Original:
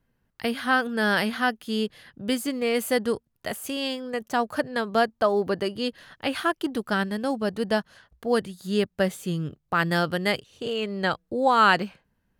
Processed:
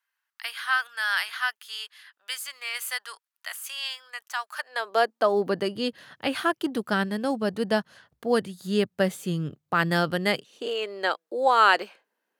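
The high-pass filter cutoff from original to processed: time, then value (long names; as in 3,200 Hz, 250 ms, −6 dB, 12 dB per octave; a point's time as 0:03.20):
high-pass filter 24 dB per octave
0:04.56 1,100 Hz
0:04.97 380 Hz
0:05.77 97 Hz
0:10.20 97 Hz
0:10.77 360 Hz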